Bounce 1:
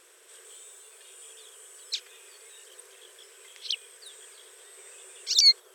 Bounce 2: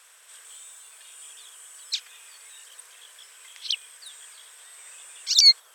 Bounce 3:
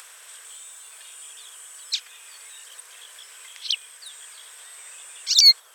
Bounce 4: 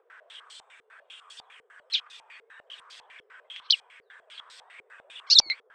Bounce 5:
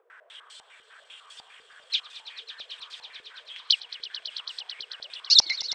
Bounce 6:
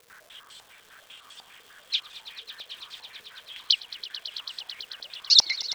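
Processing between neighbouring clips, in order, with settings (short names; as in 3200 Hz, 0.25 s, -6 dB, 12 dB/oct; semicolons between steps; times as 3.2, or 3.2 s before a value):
HPF 730 Hz 24 dB/oct; gain +3.5 dB
in parallel at -10 dB: hard clip -14.5 dBFS, distortion -10 dB; on the sum: upward compressor, threshold -39 dBFS
flange 1.9 Hz, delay 2.3 ms, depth 8.5 ms, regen +36%; stepped low-pass 10 Hz 440–4500 Hz; gain -1.5 dB
swelling echo 0.11 s, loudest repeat 5, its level -16 dB
crackle 540/s -43 dBFS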